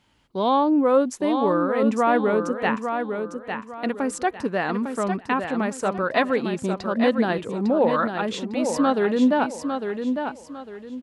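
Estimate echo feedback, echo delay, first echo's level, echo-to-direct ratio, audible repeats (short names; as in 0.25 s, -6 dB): 31%, 0.853 s, -6.5 dB, -6.0 dB, 3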